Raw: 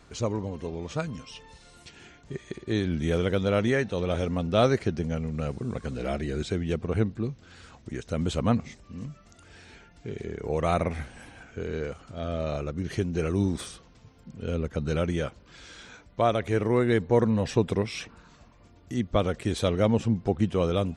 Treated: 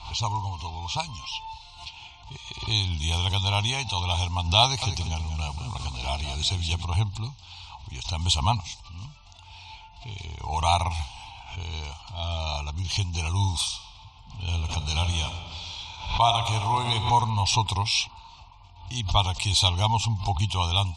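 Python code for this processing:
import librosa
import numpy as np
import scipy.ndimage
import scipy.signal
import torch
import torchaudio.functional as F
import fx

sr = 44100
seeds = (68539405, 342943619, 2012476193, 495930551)

y = fx.echo_feedback(x, sr, ms=189, feedback_pct=32, wet_db=-9.0, at=(4.63, 6.85))
y = fx.reverb_throw(y, sr, start_s=13.65, length_s=3.3, rt60_s=2.3, drr_db=6.0)
y = fx.env_lowpass(y, sr, base_hz=2900.0, full_db=-23.0)
y = fx.curve_eq(y, sr, hz=(100.0, 190.0, 530.0, 890.0, 1700.0, 2500.0, 4000.0, 6000.0, 12000.0), db=(0, -18, -24, 12, -26, 5, 11, 8, 3))
y = fx.pre_swell(y, sr, db_per_s=97.0)
y = y * 10.0 ** (5.5 / 20.0)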